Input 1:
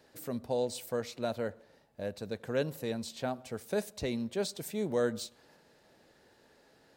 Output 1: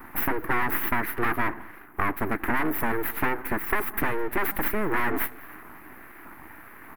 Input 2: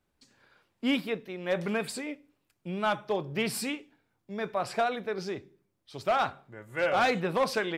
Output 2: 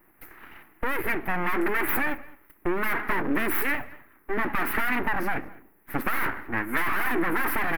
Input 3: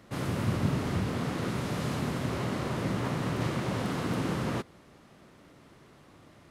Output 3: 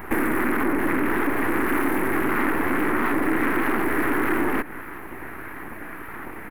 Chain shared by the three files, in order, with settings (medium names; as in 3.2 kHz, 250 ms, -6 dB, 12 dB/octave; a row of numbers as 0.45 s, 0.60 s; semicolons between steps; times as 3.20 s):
high-order bell 3.8 kHz -10.5 dB 1.2 oct; LFO notch saw down 1.6 Hz 350–1500 Hz; band-stop 1.7 kHz, Q 5.3; overload inside the chain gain 35.5 dB; high-pass 110 Hz 12 dB/octave; full-wave rectifier; compression, threshold -42 dBFS; FFT filter 150 Hz 0 dB, 220 Hz +5 dB, 310 Hz +11 dB, 540 Hz -4 dB, 850 Hz +5 dB, 1.9 kHz +13 dB, 3.4 kHz -8 dB, 7.3 kHz -18 dB, 12 kHz +11 dB; echo from a far wall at 36 m, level -22 dB; loudspeaker Doppler distortion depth 0.17 ms; peak normalisation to -9 dBFS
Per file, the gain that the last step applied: +18.5 dB, +17.5 dB, +19.5 dB